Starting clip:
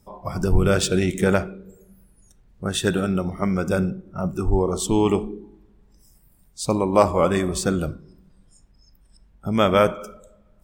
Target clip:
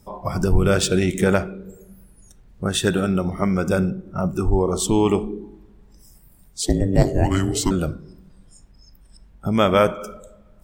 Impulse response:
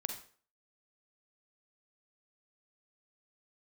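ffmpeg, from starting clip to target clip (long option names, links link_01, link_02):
-filter_complex "[0:a]asplit=2[link_01][link_02];[link_02]acompressor=threshold=-28dB:ratio=6,volume=1dB[link_03];[link_01][link_03]amix=inputs=2:normalize=0,asettb=1/sr,asplit=3[link_04][link_05][link_06];[link_04]atrim=end=6.624[link_07];[link_05]atrim=start=6.62:end=7.71,asetpts=PTS-STARTPTS,afade=type=in:duration=0.004:curve=qsin,afade=type=out:start_time=1.086:duration=0.004:curve=qsin,afreqshift=-480[link_08];[link_06]atrim=start=7.706[link_09];[link_07][link_08]acrossfade=duration=0.004:curve1=hsin:curve2=qsin[link_10];[link_10][link_09]acrossfade=duration=0.004:curve1=qsin:curve2=hsin,volume=-1dB"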